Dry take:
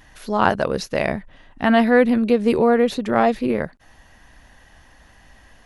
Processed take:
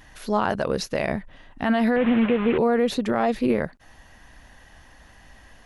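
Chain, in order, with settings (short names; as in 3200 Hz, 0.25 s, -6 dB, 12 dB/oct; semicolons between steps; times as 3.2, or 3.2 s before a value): 1.96–2.58 delta modulation 16 kbps, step -21 dBFS; limiter -12 dBFS, peak gain reduction 9.5 dB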